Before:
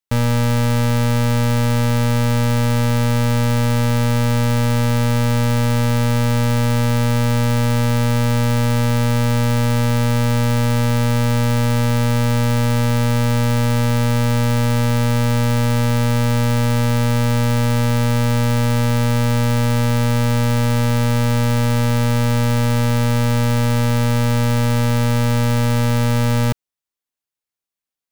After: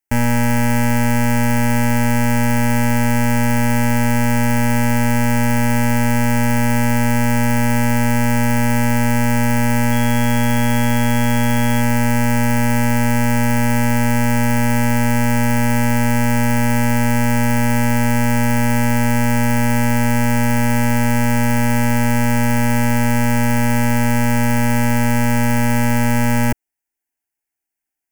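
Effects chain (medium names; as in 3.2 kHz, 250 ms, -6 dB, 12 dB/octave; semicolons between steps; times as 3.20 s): static phaser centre 770 Hz, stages 8; 9.91–11.80 s: whistle 3.3 kHz -42 dBFS; trim +6.5 dB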